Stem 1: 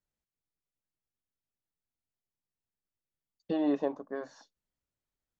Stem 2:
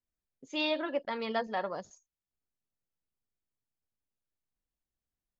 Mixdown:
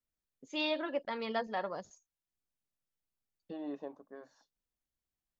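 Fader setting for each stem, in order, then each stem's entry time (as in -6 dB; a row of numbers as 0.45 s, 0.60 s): -12.5 dB, -2.5 dB; 0.00 s, 0.00 s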